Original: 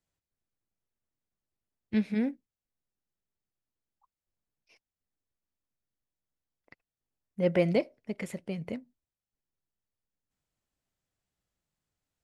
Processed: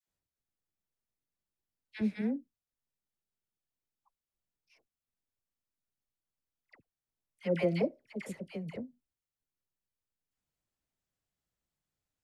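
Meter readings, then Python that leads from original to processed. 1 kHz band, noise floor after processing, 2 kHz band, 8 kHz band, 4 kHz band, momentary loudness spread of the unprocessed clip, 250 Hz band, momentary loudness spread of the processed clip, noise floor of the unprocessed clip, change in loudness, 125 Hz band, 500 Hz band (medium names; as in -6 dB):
-4.0 dB, under -85 dBFS, -4.0 dB, no reading, -4.0 dB, 15 LU, -4.0 dB, 14 LU, under -85 dBFS, -4.0 dB, -4.0 dB, -4.0 dB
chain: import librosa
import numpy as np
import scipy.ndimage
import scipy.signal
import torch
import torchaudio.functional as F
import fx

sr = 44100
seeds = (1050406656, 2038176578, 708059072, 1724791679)

y = fx.dispersion(x, sr, late='lows', ms=77.0, hz=890.0)
y = y * 10.0 ** (-4.0 / 20.0)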